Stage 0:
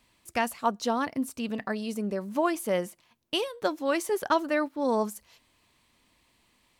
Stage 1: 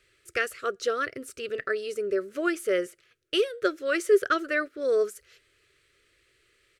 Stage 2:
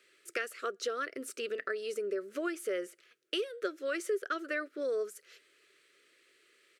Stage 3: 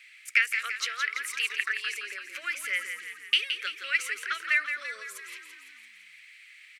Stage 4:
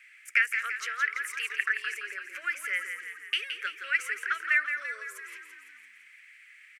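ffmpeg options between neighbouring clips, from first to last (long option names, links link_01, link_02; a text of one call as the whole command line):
ffmpeg -i in.wav -af "firequalizer=gain_entry='entry(130,0);entry(220,-19);entry(390,12);entry(600,-1);entry(880,-28);entry(1300,9);entry(2400,4);entry(3700,1);entry(8400,1);entry(15000,-8)':delay=0.05:min_phase=1,volume=-1.5dB" out.wav
ffmpeg -i in.wav -af "highpass=frequency=210:width=0.5412,highpass=frequency=210:width=1.3066,acompressor=threshold=-34dB:ratio=3" out.wav
ffmpeg -i in.wav -filter_complex "[0:a]highpass=frequency=2200:width_type=q:width=5,asplit=8[link_01][link_02][link_03][link_04][link_05][link_06][link_07][link_08];[link_02]adelay=169,afreqshift=-42,volume=-8dB[link_09];[link_03]adelay=338,afreqshift=-84,volume=-12.7dB[link_10];[link_04]adelay=507,afreqshift=-126,volume=-17.5dB[link_11];[link_05]adelay=676,afreqshift=-168,volume=-22.2dB[link_12];[link_06]adelay=845,afreqshift=-210,volume=-26.9dB[link_13];[link_07]adelay=1014,afreqshift=-252,volume=-31.7dB[link_14];[link_08]adelay=1183,afreqshift=-294,volume=-36.4dB[link_15];[link_01][link_09][link_10][link_11][link_12][link_13][link_14][link_15]amix=inputs=8:normalize=0,volume=6dB" out.wav
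ffmpeg -i in.wav -filter_complex "[0:a]equalizer=frequency=160:width_type=o:width=0.67:gain=-12,equalizer=frequency=400:width_type=o:width=0.67:gain=4,equalizer=frequency=1600:width_type=o:width=0.67:gain=8,equalizer=frequency=4000:width_type=o:width=0.67:gain=-10,asplit=2[link_01][link_02];[link_02]adelay=220,highpass=300,lowpass=3400,asoftclip=type=hard:threshold=-13.5dB,volume=-21dB[link_03];[link_01][link_03]amix=inputs=2:normalize=0,volume=-3.5dB" out.wav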